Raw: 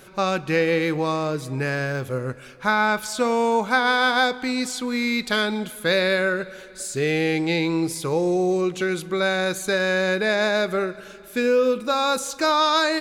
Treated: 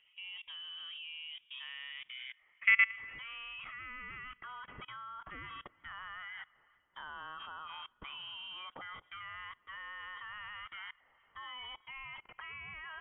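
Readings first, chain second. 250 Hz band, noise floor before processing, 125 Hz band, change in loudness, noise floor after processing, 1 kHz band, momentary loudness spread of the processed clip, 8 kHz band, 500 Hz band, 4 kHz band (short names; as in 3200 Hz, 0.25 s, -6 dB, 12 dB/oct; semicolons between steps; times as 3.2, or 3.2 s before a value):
under -40 dB, -43 dBFS, -32.5 dB, -17.0 dB, -71 dBFS, -23.0 dB, 5 LU, under -40 dB, under -40 dB, -16.5 dB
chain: band-pass sweep 720 Hz -> 2300 Hz, 1.11–3.92; level quantiser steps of 23 dB; inverted band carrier 3500 Hz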